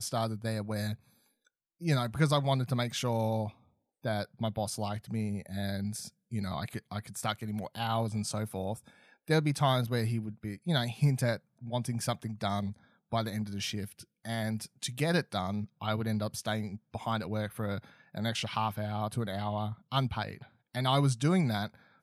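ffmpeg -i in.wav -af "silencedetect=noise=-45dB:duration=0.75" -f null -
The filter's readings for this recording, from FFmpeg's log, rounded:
silence_start: 0.95
silence_end: 1.81 | silence_duration: 0.86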